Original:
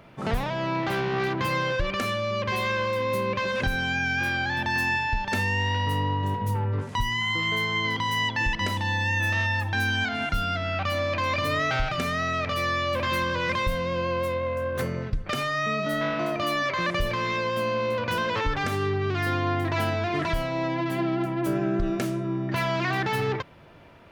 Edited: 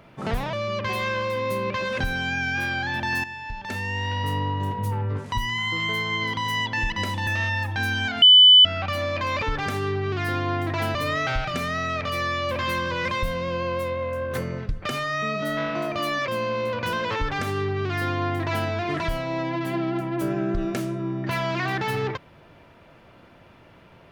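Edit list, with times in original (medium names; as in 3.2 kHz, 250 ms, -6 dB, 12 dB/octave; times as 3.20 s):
0.53–2.16 s: delete
4.87–5.95 s: fade in, from -13 dB
8.90–9.24 s: delete
10.19–10.62 s: bleep 3 kHz -8 dBFS
16.72–17.53 s: delete
18.40–19.93 s: copy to 11.39 s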